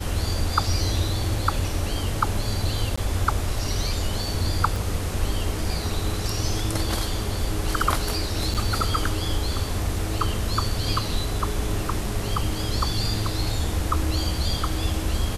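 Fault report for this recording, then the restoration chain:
2.96–2.98 s: dropout 15 ms
4.76 s: pop
8.54–8.55 s: dropout 7.3 ms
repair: de-click; interpolate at 2.96 s, 15 ms; interpolate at 8.54 s, 7.3 ms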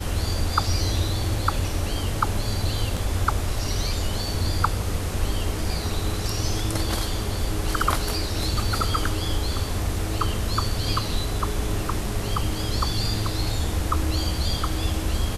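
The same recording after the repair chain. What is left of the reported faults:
4.76 s: pop

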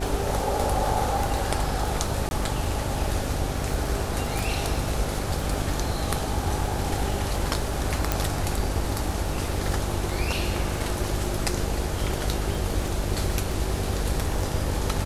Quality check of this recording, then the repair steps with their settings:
buzz 50 Hz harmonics 13 -31 dBFS
crackle 39 per s -31 dBFS
2.29–2.31 s: dropout 21 ms
4.39 s: pop
8.12 s: pop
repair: de-click; de-hum 50 Hz, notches 13; interpolate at 2.29 s, 21 ms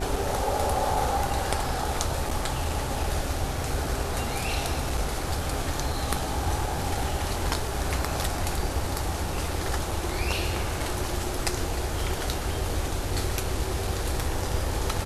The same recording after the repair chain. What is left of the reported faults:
nothing left

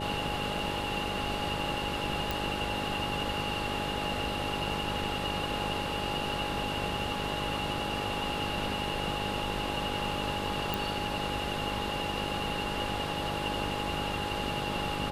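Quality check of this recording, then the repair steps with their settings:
buzz 50 Hz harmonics 12 -38 dBFS
whine 830 Hz -37 dBFS
2.31 s: pop
10.74 s: pop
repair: de-click; de-hum 50 Hz, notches 12; band-stop 830 Hz, Q 30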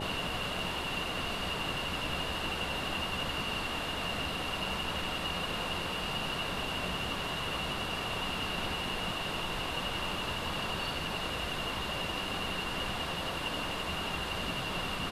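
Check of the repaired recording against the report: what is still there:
nothing left

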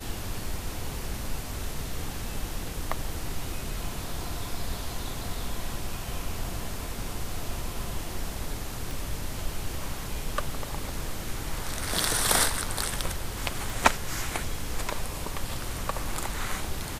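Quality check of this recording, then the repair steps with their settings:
8.91 s: pop
13.70 s: pop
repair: de-click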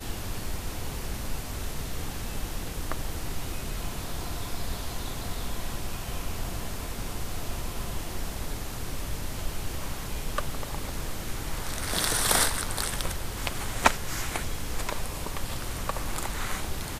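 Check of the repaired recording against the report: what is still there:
8.91 s: pop

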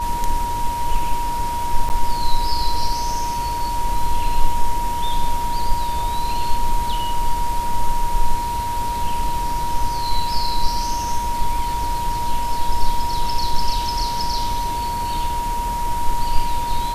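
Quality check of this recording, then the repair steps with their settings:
whine 950 Hz -22 dBFS
1.89–1.90 s: dropout 9.3 ms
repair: band-stop 950 Hz, Q 30; interpolate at 1.89 s, 9.3 ms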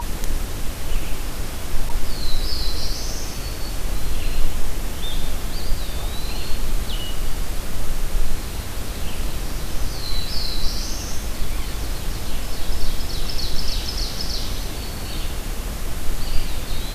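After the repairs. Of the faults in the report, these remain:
nothing left

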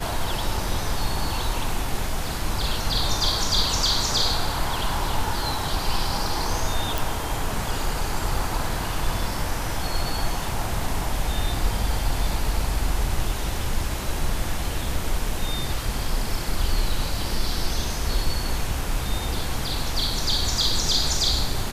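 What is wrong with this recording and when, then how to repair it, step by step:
6.98 s: pop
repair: de-click

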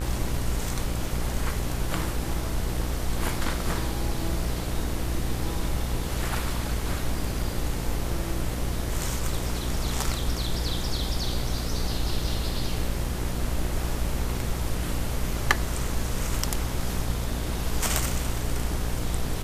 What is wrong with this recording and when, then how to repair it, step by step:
buzz 60 Hz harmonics 37 -31 dBFS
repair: de-hum 60 Hz, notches 37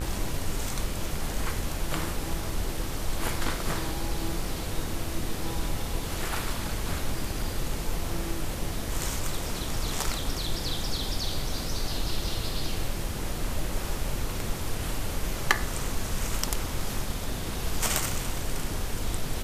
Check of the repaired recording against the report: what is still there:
nothing left

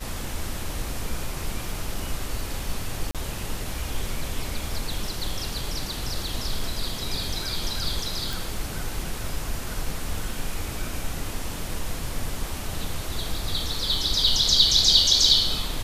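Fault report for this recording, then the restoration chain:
3.11–3.15 s: dropout 37 ms
8.33 s: pop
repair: de-click; interpolate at 3.11 s, 37 ms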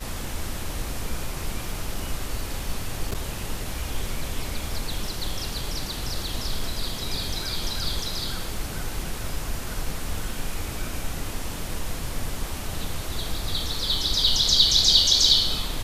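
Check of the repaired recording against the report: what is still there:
nothing left

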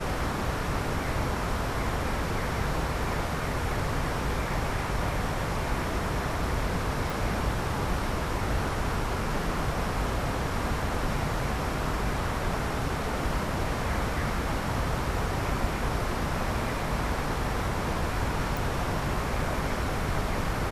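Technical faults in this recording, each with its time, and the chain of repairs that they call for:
7.10 s: pop
18.57 s: pop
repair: de-click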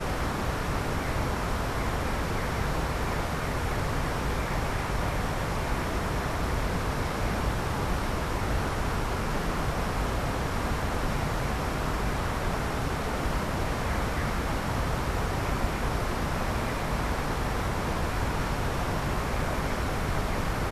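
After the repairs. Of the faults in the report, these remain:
nothing left

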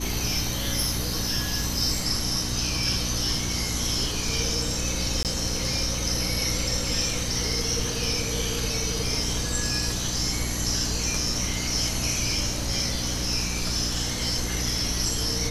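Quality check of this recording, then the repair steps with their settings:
hum 60 Hz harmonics 5 -32 dBFS
1.62 s: dropout 2.1 ms
5.23–5.25 s: dropout 18 ms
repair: de-hum 60 Hz, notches 5; interpolate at 1.62 s, 2.1 ms; interpolate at 5.23 s, 18 ms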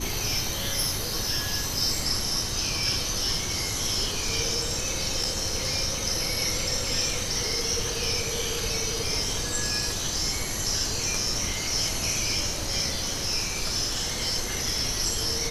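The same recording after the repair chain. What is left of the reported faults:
nothing left

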